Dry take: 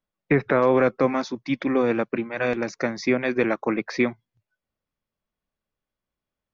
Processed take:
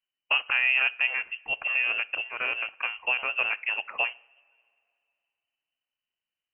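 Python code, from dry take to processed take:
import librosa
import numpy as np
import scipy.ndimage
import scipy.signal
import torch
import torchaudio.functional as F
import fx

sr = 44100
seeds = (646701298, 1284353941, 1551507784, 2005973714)

y = fx.rev_double_slope(x, sr, seeds[0], early_s=0.49, late_s=2.6, knee_db=-19, drr_db=18.0)
y = fx.freq_invert(y, sr, carrier_hz=3000)
y = y * 10.0 ** (-5.5 / 20.0)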